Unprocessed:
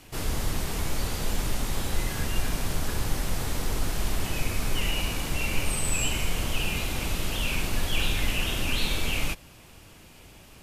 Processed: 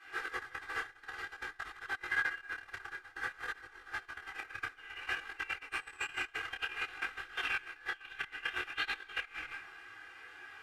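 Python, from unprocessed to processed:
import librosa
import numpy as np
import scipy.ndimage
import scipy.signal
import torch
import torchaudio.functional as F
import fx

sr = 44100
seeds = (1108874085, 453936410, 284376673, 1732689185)

y = x + 0.91 * np.pad(x, (int(2.5 * sr / 1000.0), 0))[:len(x)]
y = y + 10.0 ** (-11.0 / 20.0) * np.pad(y, (int(205 * sr / 1000.0), 0))[:len(y)]
y = fx.room_shoebox(y, sr, seeds[0], volume_m3=48.0, walls='mixed', distance_m=1.2)
y = fx.over_compress(y, sr, threshold_db=-12.0, ratio=-1.0)
y = fx.bandpass_q(y, sr, hz=1600.0, q=6.1)
y = fx.detune_double(y, sr, cents=19)
y = y * librosa.db_to_amplitude(1.0)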